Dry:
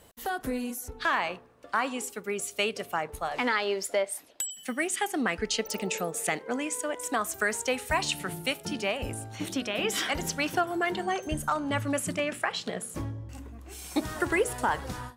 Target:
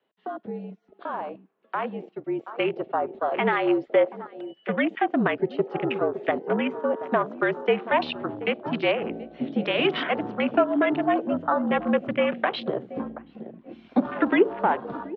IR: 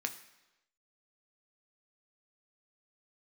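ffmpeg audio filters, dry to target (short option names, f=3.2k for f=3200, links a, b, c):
-filter_complex "[0:a]asplit=2[a][b];[b]adelay=728,lowpass=f=2.2k:p=1,volume=-14.5dB,asplit=2[c][d];[d]adelay=728,lowpass=f=2.2k:p=1,volume=0.25,asplit=2[e][f];[f]adelay=728,lowpass=f=2.2k:p=1,volume=0.25[g];[a][c][e][g]amix=inputs=4:normalize=0,acrossover=split=280|1100|2500[h][i][j][k];[j]acompressor=threshold=-43dB:ratio=6[l];[k]alimiter=level_in=2dB:limit=-24dB:level=0:latency=1:release=419,volume=-2dB[m];[h][i][l][m]amix=inputs=4:normalize=0,dynaudnorm=f=270:g=17:m=8.5dB,afwtdn=0.0316,highpass=f=260:t=q:w=0.5412,highpass=f=260:t=q:w=1.307,lowpass=f=3.6k:t=q:w=0.5176,lowpass=f=3.6k:t=q:w=0.7071,lowpass=f=3.6k:t=q:w=1.932,afreqshift=-51"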